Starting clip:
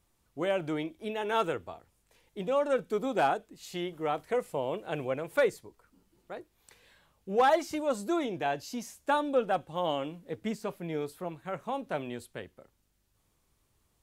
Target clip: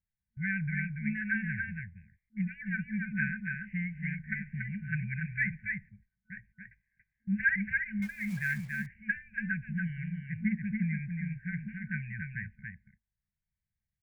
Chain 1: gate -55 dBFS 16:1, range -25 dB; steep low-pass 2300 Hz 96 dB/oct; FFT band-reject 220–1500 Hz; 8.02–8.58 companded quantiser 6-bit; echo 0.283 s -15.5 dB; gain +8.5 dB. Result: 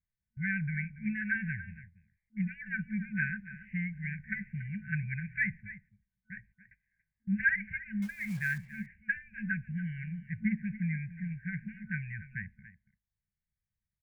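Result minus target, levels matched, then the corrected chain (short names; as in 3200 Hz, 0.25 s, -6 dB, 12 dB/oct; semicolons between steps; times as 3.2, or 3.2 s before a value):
echo-to-direct -11 dB
gate -55 dBFS 16:1, range -25 dB; steep low-pass 2300 Hz 96 dB/oct; FFT band-reject 220–1500 Hz; 8.02–8.58 companded quantiser 6-bit; echo 0.283 s -4.5 dB; gain +8.5 dB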